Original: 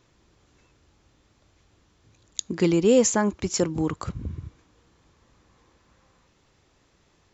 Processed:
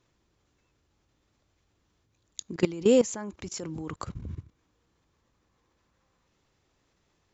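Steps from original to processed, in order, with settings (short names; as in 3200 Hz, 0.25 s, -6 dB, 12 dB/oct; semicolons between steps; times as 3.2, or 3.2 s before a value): level quantiser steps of 18 dB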